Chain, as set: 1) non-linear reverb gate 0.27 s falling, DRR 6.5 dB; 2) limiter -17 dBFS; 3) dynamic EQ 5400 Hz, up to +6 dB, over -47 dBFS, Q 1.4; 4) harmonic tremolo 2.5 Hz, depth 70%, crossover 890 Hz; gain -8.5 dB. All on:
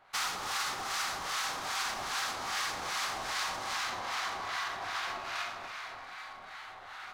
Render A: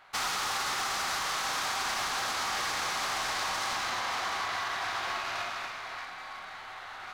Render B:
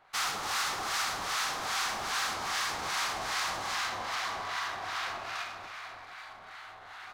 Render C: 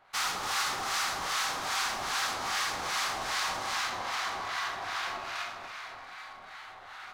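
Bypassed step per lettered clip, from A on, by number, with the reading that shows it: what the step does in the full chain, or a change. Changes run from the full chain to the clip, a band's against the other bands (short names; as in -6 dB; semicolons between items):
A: 4, crest factor change -4.5 dB; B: 1, momentary loudness spread change +4 LU; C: 2, mean gain reduction 2.0 dB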